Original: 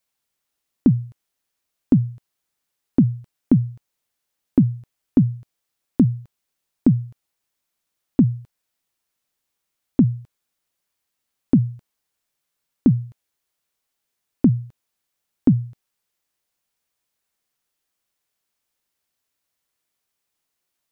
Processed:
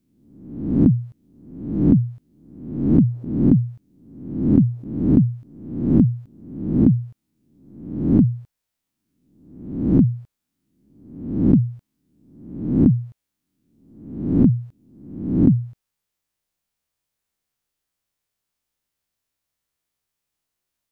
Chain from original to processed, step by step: reverse spectral sustain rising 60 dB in 0.84 s; bass shelf 180 Hz +9 dB; trim -5.5 dB

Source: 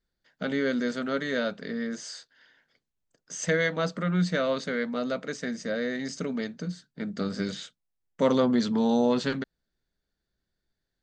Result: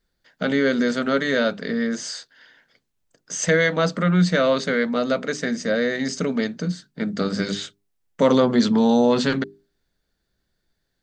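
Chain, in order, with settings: hum notches 50/100/150/200/250/300/350/400 Hz; in parallel at 0 dB: peak limiter -19 dBFS, peak gain reduction 7 dB; on the sum: trim +2.5 dB

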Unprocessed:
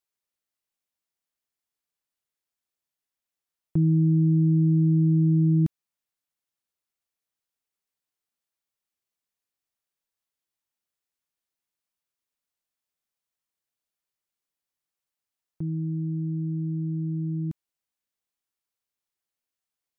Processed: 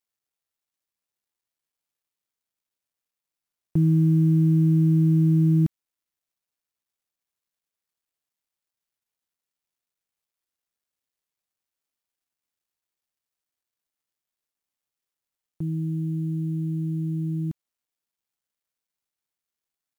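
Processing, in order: companded quantiser 8-bit; trim +1.5 dB

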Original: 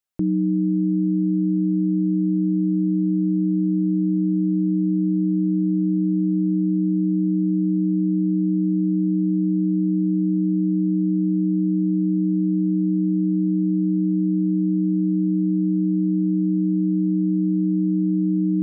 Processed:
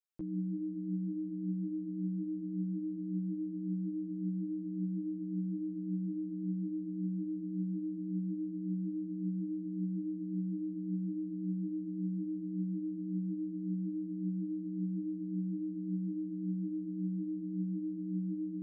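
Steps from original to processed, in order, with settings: peak limiter -19 dBFS, peak gain reduction 5 dB; three-phase chorus; trim -8.5 dB

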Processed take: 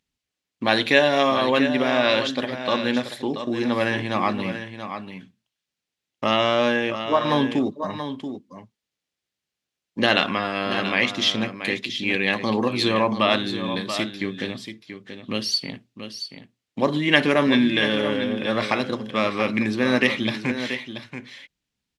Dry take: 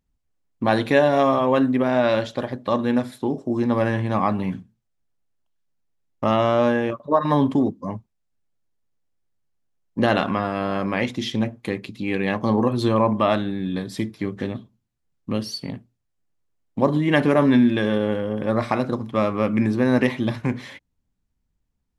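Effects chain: frequency weighting D; on a send: delay 682 ms -9.5 dB; on the sum: trim -1.5 dB

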